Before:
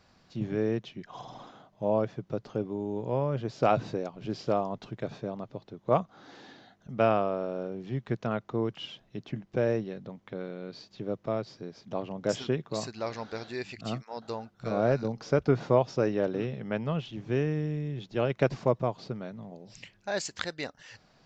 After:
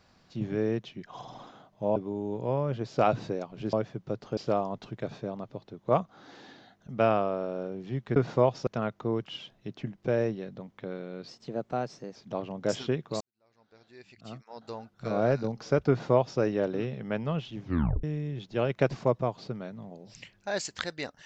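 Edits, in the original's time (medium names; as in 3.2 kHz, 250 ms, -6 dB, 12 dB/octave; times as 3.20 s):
1.96–2.60 s: move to 4.37 s
10.77–11.76 s: speed 113%
12.81–14.68 s: fade in quadratic
15.49–16.00 s: copy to 8.16 s
17.23 s: tape stop 0.41 s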